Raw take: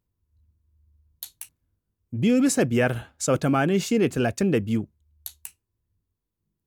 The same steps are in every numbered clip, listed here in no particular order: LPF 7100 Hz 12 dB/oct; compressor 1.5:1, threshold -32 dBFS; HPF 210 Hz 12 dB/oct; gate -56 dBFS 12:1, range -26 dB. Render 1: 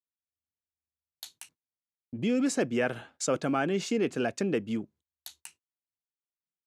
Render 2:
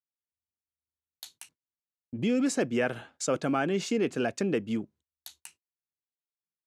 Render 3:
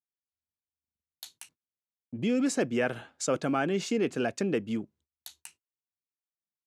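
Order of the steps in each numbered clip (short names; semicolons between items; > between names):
LPF > compressor > HPF > gate; HPF > compressor > LPF > gate; compressor > LPF > gate > HPF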